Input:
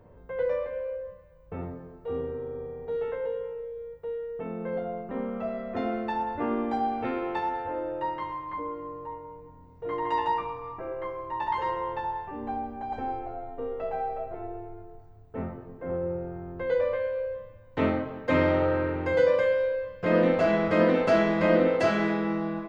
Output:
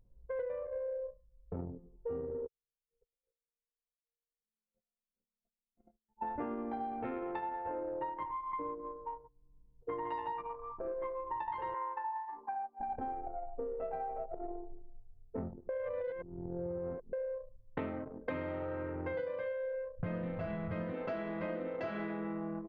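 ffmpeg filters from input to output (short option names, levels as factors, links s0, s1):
-filter_complex "[0:a]asplit=3[s0][s1][s2];[s0]afade=t=out:st=2.46:d=0.02[s3];[s1]agate=range=0.00355:threshold=0.0501:ratio=16:release=100:detection=peak,afade=t=in:st=2.46:d=0.02,afade=t=out:st=6.21:d=0.02[s4];[s2]afade=t=in:st=6.21:d=0.02[s5];[s3][s4][s5]amix=inputs=3:normalize=0,asplit=3[s6][s7][s8];[s6]afade=t=out:st=9.27:d=0.02[s9];[s7]acompressor=threshold=0.00447:ratio=12:attack=3.2:release=140:knee=1:detection=peak,afade=t=in:st=9.27:d=0.02,afade=t=out:st=9.87:d=0.02[s10];[s8]afade=t=in:st=9.87:d=0.02[s11];[s9][s10][s11]amix=inputs=3:normalize=0,asettb=1/sr,asplit=3[s12][s13][s14];[s12]atrim=end=11.744[s15];[s13]atrim=start=11.74:end=12.8,asetpts=PTS-STARTPTS,afade=t=in:d=0.004:c=qsin,afade=t=out:st=1.056:d=0.004:c=qsin,highpass=f=380:w=0.5412,highpass=f=380:w=1.3066,equalizer=f=440:t=q:w=4:g=-5,equalizer=f=660:t=q:w=4:g=-9,equalizer=f=1000:t=q:w=4:g=8,equalizer=f=1500:t=q:w=4:g=4,equalizer=f=2100:t=q:w=4:g=4,lowpass=f=2300:w=0.5412,lowpass=f=2300:w=1.3066[s16];[s14]atrim=start=12.796[s17];[s15][s16]acrossfade=d=0.004:c1=hsin:c2=qsin[s18];[s18][s17]acrossfade=d=0.004:c1=qsin:c2=hsin,asplit=3[s19][s20][s21];[s19]afade=t=out:st=19.98:d=0.02[s22];[s20]lowshelf=f=190:t=q:w=1.5:g=13,afade=t=in:st=19.98:d=0.02,afade=t=out:st=20.91:d=0.02[s23];[s21]afade=t=in:st=20.91:d=0.02[s24];[s22][s23][s24]amix=inputs=3:normalize=0,asplit=3[s25][s26][s27];[s25]atrim=end=15.692[s28];[s26]atrim=start=15.688:end=17.132,asetpts=PTS-STARTPTS,areverse[s29];[s27]atrim=start=17.128[s30];[s28][s29]acrossfade=d=0.004:c1=hsin:c2=hsin[s31];[s31][s30]acrossfade=d=0.004:c1=hsin:c2=hsin,anlmdn=15.8,lowpass=3200,acompressor=threshold=0.0158:ratio=16,volume=1.12"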